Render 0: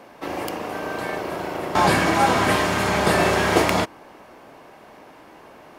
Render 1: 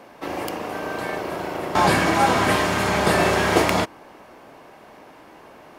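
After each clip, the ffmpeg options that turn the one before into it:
-af anull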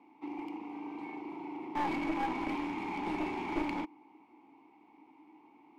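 -filter_complex "[0:a]asplit=3[s0][s1][s2];[s0]bandpass=f=300:t=q:w=8,volume=1[s3];[s1]bandpass=f=870:t=q:w=8,volume=0.501[s4];[s2]bandpass=f=2240:t=q:w=8,volume=0.355[s5];[s3][s4][s5]amix=inputs=3:normalize=0,aeval=exprs='clip(val(0),-1,0.0299)':c=same,volume=0.708"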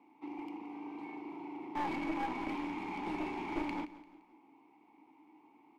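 -af "aecho=1:1:172|344|516:0.15|0.0598|0.0239,volume=0.708"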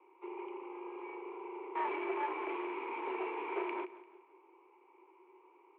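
-af "highpass=f=280:t=q:w=0.5412,highpass=f=280:t=q:w=1.307,lowpass=f=2800:t=q:w=0.5176,lowpass=f=2800:t=q:w=0.7071,lowpass=f=2800:t=q:w=1.932,afreqshift=64,volume=1.12"

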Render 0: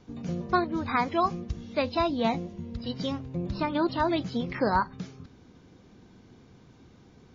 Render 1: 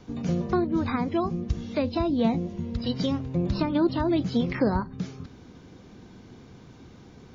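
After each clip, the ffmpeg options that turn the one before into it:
-filter_complex "[0:a]acrossover=split=450[s0][s1];[s1]acompressor=threshold=0.0126:ratio=6[s2];[s0][s2]amix=inputs=2:normalize=0,volume=2"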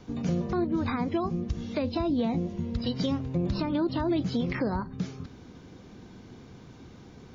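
-af "alimiter=limit=0.112:level=0:latency=1:release=110"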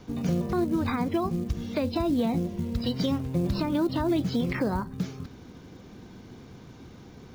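-af "acrusher=bits=7:mode=log:mix=0:aa=0.000001,volume=1.19"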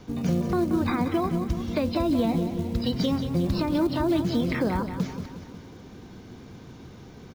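-af "aecho=1:1:180|360|540|720|900|1080:0.316|0.177|0.0992|0.0555|0.0311|0.0174,volume=1.19"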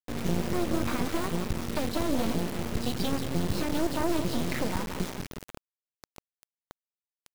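-af "acrusher=bits=3:dc=4:mix=0:aa=0.000001"

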